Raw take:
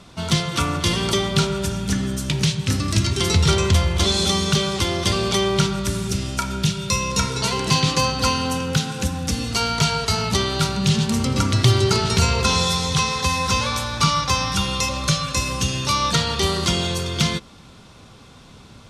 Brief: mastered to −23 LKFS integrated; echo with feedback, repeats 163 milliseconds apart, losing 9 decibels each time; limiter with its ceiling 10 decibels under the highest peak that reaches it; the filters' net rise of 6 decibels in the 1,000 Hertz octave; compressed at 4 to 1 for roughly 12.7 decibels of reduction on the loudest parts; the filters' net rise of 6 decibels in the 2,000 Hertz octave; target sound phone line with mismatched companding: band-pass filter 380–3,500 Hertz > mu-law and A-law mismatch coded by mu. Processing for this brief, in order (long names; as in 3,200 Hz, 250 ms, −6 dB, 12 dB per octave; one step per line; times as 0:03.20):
parametric band 1,000 Hz +5 dB
parametric band 2,000 Hz +7.5 dB
downward compressor 4 to 1, threshold −27 dBFS
brickwall limiter −20 dBFS
band-pass filter 380–3,500 Hz
repeating echo 163 ms, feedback 35%, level −9 dB
mu-law and A-law mismatch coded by mu
level +7 dB